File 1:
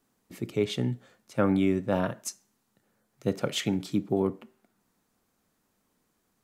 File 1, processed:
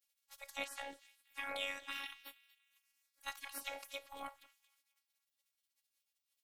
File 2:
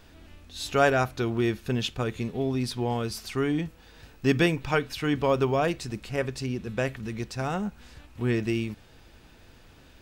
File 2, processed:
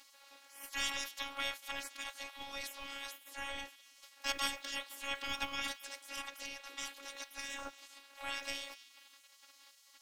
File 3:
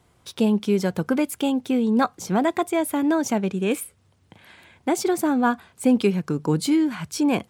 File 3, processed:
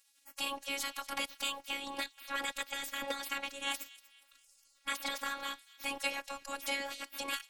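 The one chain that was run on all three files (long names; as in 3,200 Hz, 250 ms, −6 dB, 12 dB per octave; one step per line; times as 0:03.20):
gate on every frequency bin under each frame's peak −25 dB weak
phases set to zero 278 Hz
delay with a high-pass on its return 238 ms, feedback 42%, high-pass 2,600 Hz, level −18 dB
level +5.5 dB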